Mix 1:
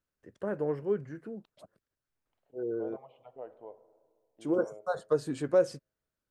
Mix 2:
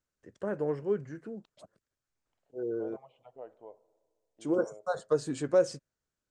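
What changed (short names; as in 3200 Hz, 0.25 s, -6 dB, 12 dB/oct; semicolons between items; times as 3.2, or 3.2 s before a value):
second voice: send -8.0 dB; master: add synth low-pass 7400 Hz, resonance Q 2.1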